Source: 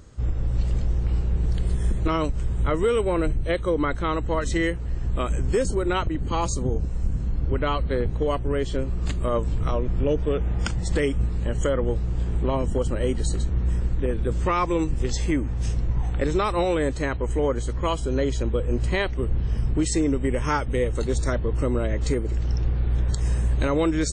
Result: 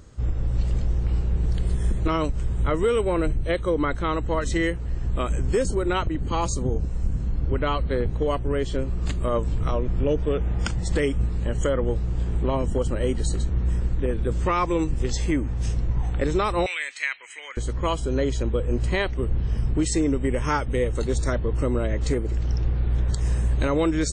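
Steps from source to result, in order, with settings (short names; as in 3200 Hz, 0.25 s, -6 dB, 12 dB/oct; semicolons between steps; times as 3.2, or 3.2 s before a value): 16.66–17.57 resonant high-pass 2200 Hz, resonance Q 4.1; 22.02–23.37 Doppler distortion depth 0.14 ms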